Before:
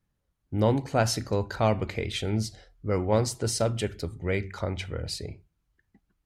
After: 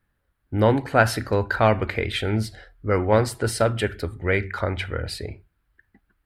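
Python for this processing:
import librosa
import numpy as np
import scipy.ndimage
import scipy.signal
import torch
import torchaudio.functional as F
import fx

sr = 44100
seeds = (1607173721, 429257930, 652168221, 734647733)

y = fx.graphic_eq_15(x, sr, hz=(160, 1600, 6300), db=(-6, 9, -12))
y = y * librosa.db_to_amplitude(5.5)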